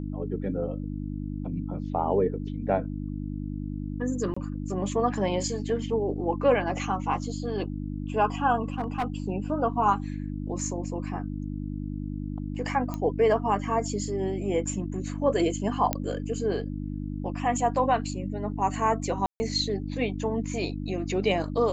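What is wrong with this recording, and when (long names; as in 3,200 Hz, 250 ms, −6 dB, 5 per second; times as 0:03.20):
mains hum 50 Hz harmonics 6 −33 dBFS
0:04.34–0:04.37: drop-out 25 ms
0:08.64–0:09.04: clipping −23 dBFS
0:12.94: click −19 dBFS
0:15.93: click −8 dBFS
0:19.26–0:19.40: drop-out 140 ms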